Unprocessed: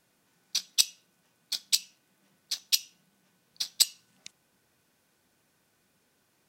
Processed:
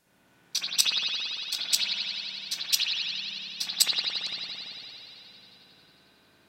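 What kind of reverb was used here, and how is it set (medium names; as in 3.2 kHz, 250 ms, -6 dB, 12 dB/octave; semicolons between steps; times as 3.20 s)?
spring tank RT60 3.5 s, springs 56 ms, chirp 35 ms, DRR -10 dB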